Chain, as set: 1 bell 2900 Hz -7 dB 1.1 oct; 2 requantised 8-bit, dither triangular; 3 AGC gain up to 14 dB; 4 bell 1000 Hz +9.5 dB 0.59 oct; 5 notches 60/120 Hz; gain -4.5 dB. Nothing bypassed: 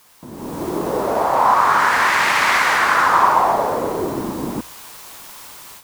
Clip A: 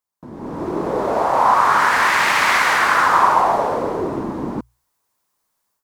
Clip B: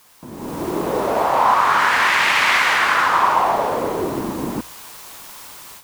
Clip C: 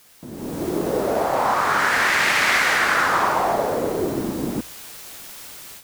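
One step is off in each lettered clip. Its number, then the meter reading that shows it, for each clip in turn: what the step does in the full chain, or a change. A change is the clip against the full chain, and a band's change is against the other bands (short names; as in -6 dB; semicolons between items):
2, distortion -20 dB; 1, 4 kHz band +3.5 dB; 4, 1 kHz band -6.0 dB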